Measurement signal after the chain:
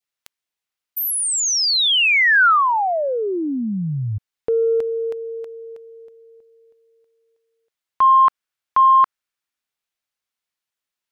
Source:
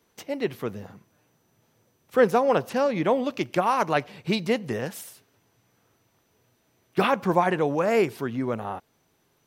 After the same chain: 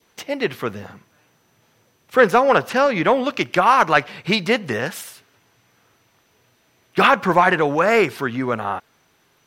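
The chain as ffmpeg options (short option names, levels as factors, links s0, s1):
-af "equalizer=f=2400:w=0.4:g=7,acontrast=38,adynamicequalizer=threshold=0.0316:dfrequency=1400:dqfactor=1.9:tfrequency=1400:tqfactor=1.9:attack=5:release=100:ratio=0.375:range=2.5:mode=boostabove:tftype=bell,volume=0.794"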